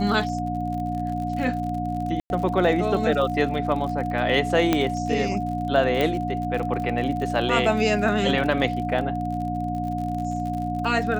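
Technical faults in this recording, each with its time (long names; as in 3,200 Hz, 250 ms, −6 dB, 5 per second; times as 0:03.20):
surface crackle 53 per second −31 dBFS
mains hum 60 Hz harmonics 5 −29 dBFS
whistle 720 Hz −28 dBFS
0:02.20–0:02.30: drop-out 101 ms
0:04.73: click −6 dBFS
0:06.01: click −11 dBFS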